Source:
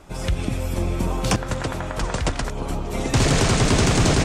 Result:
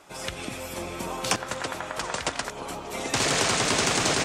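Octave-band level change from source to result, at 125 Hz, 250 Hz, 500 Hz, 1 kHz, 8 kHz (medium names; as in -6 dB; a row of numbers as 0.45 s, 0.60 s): -16.0 dB, -10.0 dB, -5.0 dB, -2.0 dB, 0.0 dB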